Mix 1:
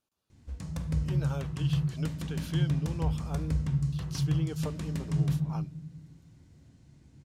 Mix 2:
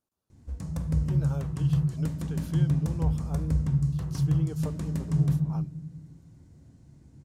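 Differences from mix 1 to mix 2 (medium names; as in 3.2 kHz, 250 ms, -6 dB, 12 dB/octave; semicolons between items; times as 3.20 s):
background +3.5 dB; master: add peaking EQ 3 kHz -9 dB 2 oct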